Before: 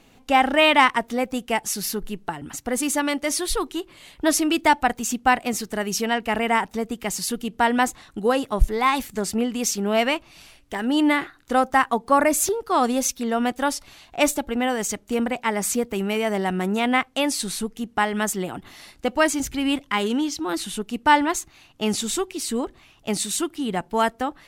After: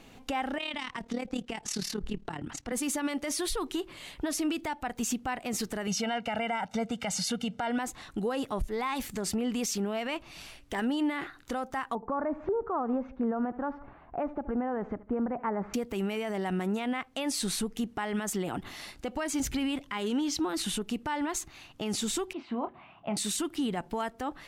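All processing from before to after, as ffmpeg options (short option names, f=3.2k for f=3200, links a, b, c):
-filter_complex "[0:a]asettb=1/sr,asplit=3[a][b][c];[a]atrim=end=0.584[d];[b]atrim=start=0.58:end=2.72,asetpts=PTS-STARTPTS,afade=t=in:d=0.004:c=qsin,afade=t=out:st=2.136:d=0.004:c=qsin,acrossover=split=190|3000[e][f][g];[f]acompressor=threshold=-29dB:ratio=6:attack=3.2:release=140:knee=2.83:detection=peak[h];[e][h][g]amix=inputs=3:normalize=0,tremolo=f=37:d=0.788,lowpass=6.4k[i];[c]atrim=start=2.716[j];[d][i]acrossfade=d=0.004:c1=hsin:c2=qsin[k];[k][j]acrossfade=d=0.004:c1=qsin:c2=hsin,asettb=1/sr,asplit=3[l][m][n];[l]atrim=end=5.874[o];[m]atrim=start=5.87:end=7.78,asetpts=PTS-STARTPTS,afade=t=in:d=0.004:c=qsin,afade=t=out:st=1.906:d=0.004:c=qsin,highpass=110,lowpass=7.4k,aecho=1:1:1.4:0.9,atrim=end_sample=84231[p];[n]atrim=start=7.776[q];[o][p]acrossfade=d=0.004:c1=hsin:c2=qsin[r];[r][q]acrossfade=d=0.004:c1=qsin:c2=hsin,asettb=1/sr,asplit=3[s][t][u];[s]atrim=end=11.954[v];[t]atrim=start=11.95:end=15.74,asetpts=PTS-STARTPTS,afade=t=in:d=0.004:c=qsin,afade=t=out:st=3.786:d=0.004:c=qsin,lowpass=f=1.4k:w=0.5412,lowpass=f=1.4k:w=1.3066,aecho=1:1:74|148|222:0.0668|0.0274|0.0112,atrim=end_sample=167139[w];[u]atrim=start=15.736[x];[v][w]acrossfade=d=0.004:c1=hsin:c2=qsin[y];[y][x]acrossfade=d=0.004:c1=qsin:c2=hsin,asettb=1/sr,asplit=3[z][aa][ab];[z]atrim=end=22.334[ac];[aa]atrim=start=22.33:end=23.17,asetpts=PTS-STARTPTS,afade=t=in:d=0.004:c=qsin,afade=t=out:st=0.836:d=0.004:c=qsin,acompressor=threshold=-40dB:ratio=1.5:attack=3.2:release=140:knee=1:detection=peak,highpass=140,equalizer=f=180:t=q:w=4:g=4,equalizer=f=300:t=q:w=4:g=-4,equalizer=f=440:t=q:w=4:g=-9,equalizer=f=700:t=q:w=4:g=8,equalizer=f=1k:t=q:w=4:g=6,equalizer=f=1.8k:t=q:w=4:g=-7,lowpass=f=2.5k:w=0.5412,lowpass=f=2.5k:w=1.3066,asplit=2[ad][ae];[ae]adelay=29,volume=-10dB[af];[ad][af]amix=inputs=2:normalize=0,atrim=end_sample=37044[ag];[ab]atrim=start=23.166[ah];[ac][ag]acrossfade=d=0.004:c1=hsin:c2=qsin[ai];[ai][ah]acrossfade=d=0.004:c1=qsin:c2=hsin,highshelf=f=7.3k:g=-4,acompressor=threshold=-24dB:ratio=6,alimiter=level_in=0.5dB:limit=-24dB:level=0:latency=1:release=43,volume=-0.5dB,volume=1.5dB"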